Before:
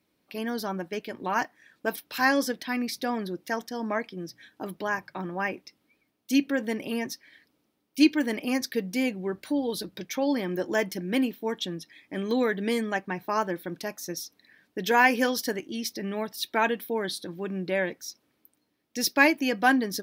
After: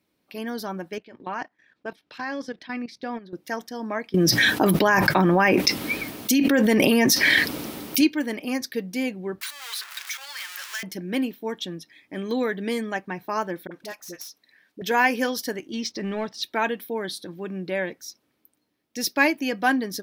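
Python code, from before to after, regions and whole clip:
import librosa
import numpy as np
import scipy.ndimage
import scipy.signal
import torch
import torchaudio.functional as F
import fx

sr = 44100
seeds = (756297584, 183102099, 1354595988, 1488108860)

y = fx.chain(x, sr, fx.lowpass(hz=4500.0, slope=12),
    fx.level_steps(step_db=15), at=(0.98, 3.33))
y = fx.chain(y, sr, fx.high_shelf(hz=11000.0, db=4.0),
    fx.env_flatten(amount_pct=100), at=(4.14, 8.01))
y = fx.chain(y, sr, fx.zero_step(step_db=-28.5),
    fx.highpass(hz=1300.0, slope=24),
    fx.band_squash(depth_pct=100), at=(9.41, 10.83))
y = fx.chain(y, sr, fx.self_delay(depth_ms=0.058),
    fx.low_shelf(hz=340.0, db=-10.0),
    fx.dispersion(late='highs', ms=44.0, hz=540.0), at=(13.67, 14.82))
y = fx.chain(y, sr, fx.lowpass(hz=6500.0, slope=24),
    fx.leveller(passes=1), at=(15.73, 16.44))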